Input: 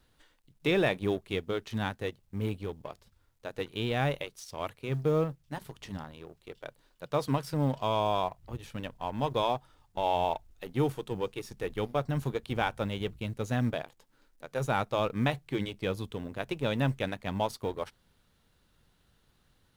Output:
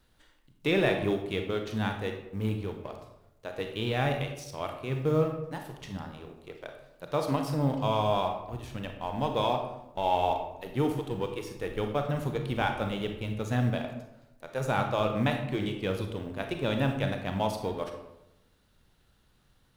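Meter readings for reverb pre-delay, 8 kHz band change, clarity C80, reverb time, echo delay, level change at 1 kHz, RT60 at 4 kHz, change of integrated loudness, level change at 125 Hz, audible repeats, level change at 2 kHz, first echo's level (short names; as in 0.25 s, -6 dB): 31 ms, +1.0 dB, 9.0 dB, 0.90 s, none, +1.5 dB, 0.55 s, +1.5 dB, +2.0 dB, none, +1.5 dB, none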